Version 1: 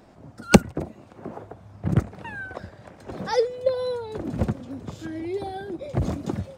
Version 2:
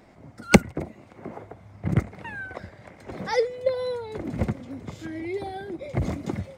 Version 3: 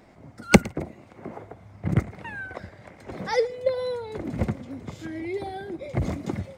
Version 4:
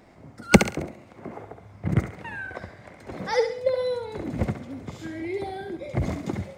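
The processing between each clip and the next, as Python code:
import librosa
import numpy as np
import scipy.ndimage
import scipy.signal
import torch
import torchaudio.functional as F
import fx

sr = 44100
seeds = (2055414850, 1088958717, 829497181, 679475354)

y1 = fx.peak_eq(x, sr, hz=2100.0, db=11.5, octaves=0.23)
y1 = F.gain(torch.from_numpy(y1), -1.5).numpy()
y2 = y1 + 10.0 ** (-22.5 / 20.0) * np.pad(y1, (int(112 * sr / 1000.0), 0))[:len(y1)]
y3 = fx.echo_thinned(y2, sr, ms=68, feedback_pct=39, hz=420.0, wet_db=-6.5)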